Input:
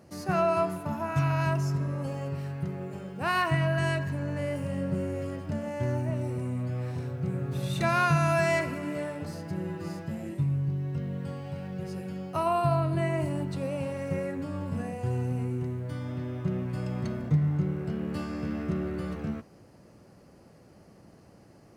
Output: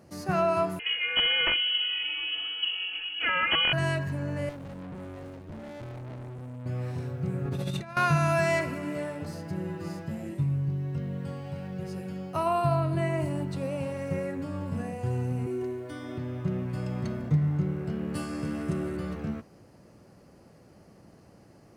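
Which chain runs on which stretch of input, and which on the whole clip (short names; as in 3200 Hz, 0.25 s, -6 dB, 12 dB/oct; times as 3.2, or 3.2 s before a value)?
0.79–3.73 comb 5 ms, depth 76% + wrapped overs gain 16.5 dB + inverted band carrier 3100 Hz
4.49–6.66 median filter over 41 samples + tube stage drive 38 dB, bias 0.75
7.45–7.97 HPF 44 Hz + high shelf 5400 Hz -6 dB + negative-ratio compressor -32 dBFS, ratio -0.5
15.46–16.18 resonant low shelf 230 Hz -9 dB, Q 1.5 + comb 2.8 ms, depth 73%
18.15–18.97 bell 9000 Hz +14.5 dB + comb 7.4 ms, depth 42%
whole clip: dry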